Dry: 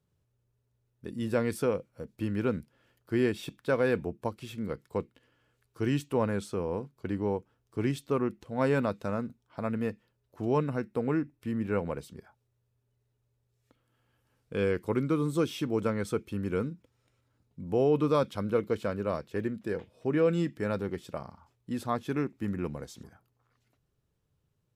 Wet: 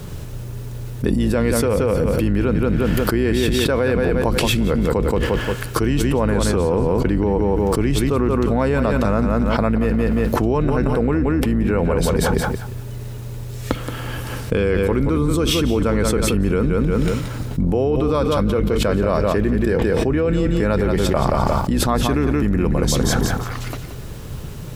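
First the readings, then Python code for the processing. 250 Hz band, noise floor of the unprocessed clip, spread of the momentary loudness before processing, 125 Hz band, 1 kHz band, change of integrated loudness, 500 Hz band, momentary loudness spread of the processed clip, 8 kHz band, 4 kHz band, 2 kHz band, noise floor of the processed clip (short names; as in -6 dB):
+13.0 dB, -77 dBFS, 11 LU, +15.5 dB, +13.0 dB, +12.0 dB, +11.5 dB, 10 LU, +21.5 dB, +19.5 dB, +13.0 dB, -30 dBFS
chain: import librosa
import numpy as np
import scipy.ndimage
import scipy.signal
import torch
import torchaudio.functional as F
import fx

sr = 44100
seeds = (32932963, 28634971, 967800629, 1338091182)

p1 = fx.octave_divider(x, sr, octaves=2, level_db=-3.0)
p2 = p1 + fx.echo_feedback(p1, sr, ms=176, feedback_pct=21, wet_db=-9.5, dry=0)
p3 = fx.env_flatten(p2, sr, amount_pct=100)
y = F.gain(torch.from_numpy(p3), 3.5).numpy()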